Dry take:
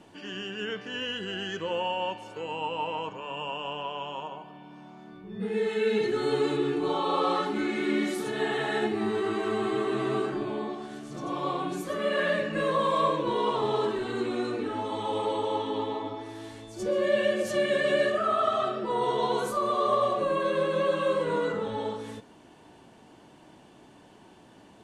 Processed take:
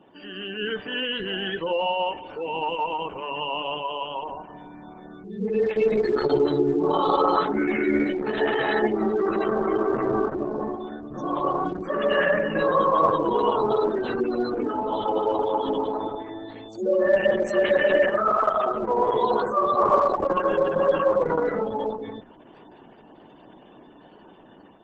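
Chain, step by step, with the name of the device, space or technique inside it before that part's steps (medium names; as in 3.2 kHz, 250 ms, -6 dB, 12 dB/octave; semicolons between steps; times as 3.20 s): 6.21–7.11 s: dynamic bell 120 Hz, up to +5 dB, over -45 dBFS, Q 1; noise-suppressed video call (high-pass 160 Hz 12 dB/octave; spectral gate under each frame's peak -20 dB strong; level rider gain up to 6 dB; Opus 12 kbps 48 kHz)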